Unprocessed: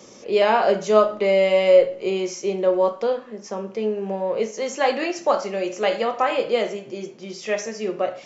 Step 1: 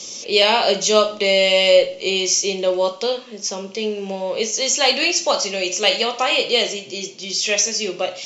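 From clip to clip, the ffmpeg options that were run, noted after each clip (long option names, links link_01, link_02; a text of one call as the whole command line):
ffmpeg -i in.wav -af "aexciter=amount=5.3:drive=8.3:freq=2500,lowpass=6500" out.wav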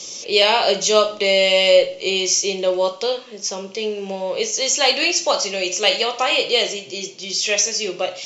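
ffmpeg -i in.wav -af "equalizer=frequency=230:width=5.2:gain=-7.5" out.wav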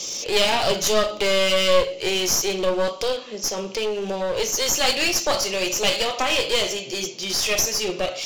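ffmpeg -i in.wav -filter_complex "[0:a]asplit=2[link_01][link_02];[link_02]acompressor=threshold=-25dB:ratio=6,volume=-0.5dB[link_03];[link_01][link_03]amix=inputs=2:normalize=0,aeval=exprs='clip(val(0),-1,0.075)':channel_layout=same,volume=-2.5dB" out.wav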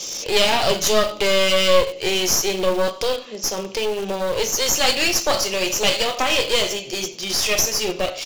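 ffmpeg -i in.wav -filter_complex "[0:a]asplit=2[link_01][link_02];[link_02]acrusher=bits=3:mix=0:aa=0.000001,volume=-10dB[link_03];[link_01][link_03]amix=inputs=2:normalize=0,aecho=1:1:91:0.075" out.wav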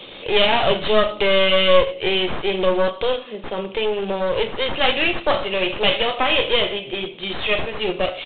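ffmpeg -i in.wav -af "aresample=8000,aresample=44100,volume=1.5dB" out.wav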